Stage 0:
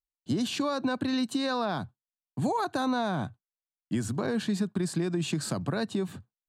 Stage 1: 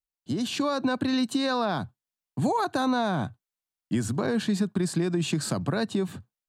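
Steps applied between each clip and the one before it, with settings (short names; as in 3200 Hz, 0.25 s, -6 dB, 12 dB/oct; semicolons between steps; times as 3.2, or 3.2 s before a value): AGC gain up to 4.5 dB; gain -1.5 dB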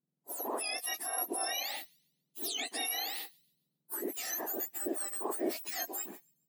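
spectrum mirrored in octaves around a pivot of 1700 Hz; thin delay 0.139 s, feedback 37%, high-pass 4000 Hz, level -23.5 dB; gain -5 dB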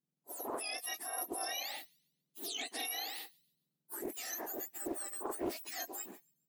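Doppler distortion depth 0.35 ms; gain -3.5 dB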